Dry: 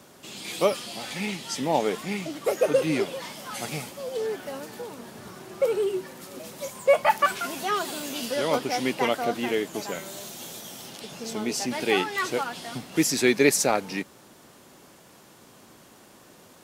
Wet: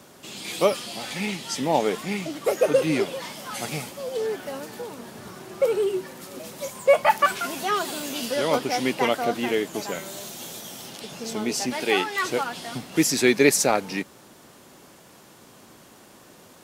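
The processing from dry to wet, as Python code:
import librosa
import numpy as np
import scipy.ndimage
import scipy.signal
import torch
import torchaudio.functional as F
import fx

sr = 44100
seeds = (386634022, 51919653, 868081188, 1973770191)

y = fx.low_shelf(x, sr, hz=160.0, db=-11.0, at=(11.7, 12.25))
y = F.gain(torch.from_numpy(y), 2.0).numpy()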